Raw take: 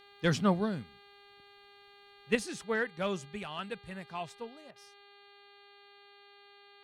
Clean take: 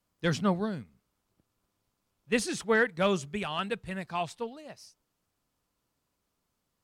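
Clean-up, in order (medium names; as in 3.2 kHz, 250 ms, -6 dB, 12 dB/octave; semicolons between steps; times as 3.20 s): de-hum 403.2 Hz, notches 11; interpolate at 4.71 s, 47 ms; gain correction +7 dB, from 2.35 s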